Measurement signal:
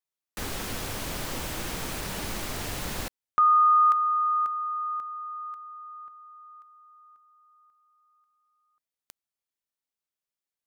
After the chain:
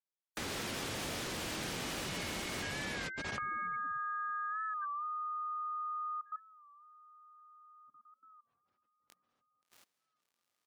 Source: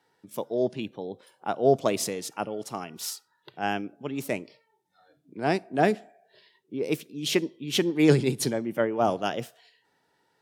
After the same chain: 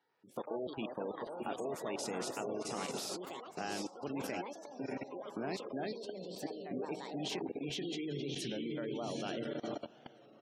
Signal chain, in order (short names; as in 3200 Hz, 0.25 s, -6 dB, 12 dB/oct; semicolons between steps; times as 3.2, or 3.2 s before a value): compressor 5:1, threshold -33 dBFS; HPF 200 Hz 6 dB/oct; doubler 22 ms -13 dB; diffused feedback echo 0.716 s, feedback 52%, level -4 dB; dynamic EQ 890 Hz, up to -5 dB, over -45 dBFS, Q 0.74; level quantiser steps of 21 dB; echoes that change speed 93 ms, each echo +5 st, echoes 3, each echo -6 dB; high shelf 8500 Hz -9.5 dB; spectral gate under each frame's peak -25 dB strong; record warp 33 1/3 rpm, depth 100 cents; gain +3.5 dB